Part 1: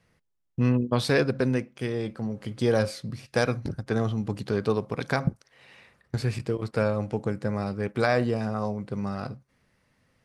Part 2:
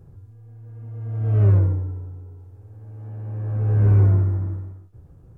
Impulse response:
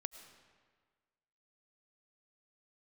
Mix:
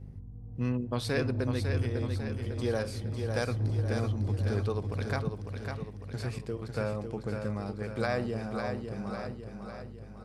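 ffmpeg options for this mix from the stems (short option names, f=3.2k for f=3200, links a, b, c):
-filter_complex "[0:a]aeval=exprs='val(0)+0.0141*(sin(2*PI*50*n/s)+sin(2*PI*2*50*n/s)/2+sin(2*PI*3*50*n/s)/3+sin(2*PI*4*50*n/s)/4+sin(2*PI*5*50*n/s)/5)':c=same,volume=-9dB,asplit=4[a][b][c][d];[b]volume=-15dB[e];[c]volume=-5dB[f];[1:a]alimiter=limit=-16.5dB:level=0:latency=1,lowpass=f=1k:w=0.5412,lowpass=f=1k:w=1.3066,asoftclip=type=tanh:threshold=-23dB,volume=-3dB,asplit=2[g][h];[h]volume=-7.5dB[i];[d]apad=whole_len=236819[j];[g][j]sidechaincompress=threshold=-38dB:ratio=8:attack=16:release=175[k];[2:a]atrim=start_sample=2205[l];[e][l]afir=irnorm=-1:irlink=0[m];[f][i]amix=inputs=2:normalize=0,aecho=0:1:551|1102|1653|2204|2755|3306|3857|4408:1|0.54|0.292|0.157|0.085|0.0459|0.0248|0.0134[n];[a][k][m][n]amix=inputs=4:normalize=0,highshelf=f=7.5k:g=4.5"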